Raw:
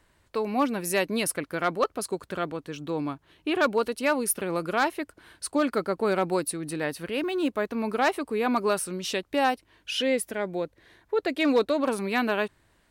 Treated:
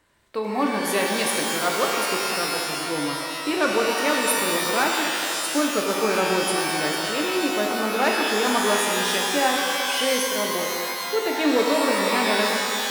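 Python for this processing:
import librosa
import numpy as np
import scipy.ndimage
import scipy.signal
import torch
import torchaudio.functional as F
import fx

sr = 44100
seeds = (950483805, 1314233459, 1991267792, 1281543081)

y = fx.low_shelf(x, sr, hz=82.0, db=-11.0)
y = fx.rev_shimmer(y, sr, seeds[0], rt60_s=2.5, semitones=12, shimmer_db=-2, drr_db=0.0)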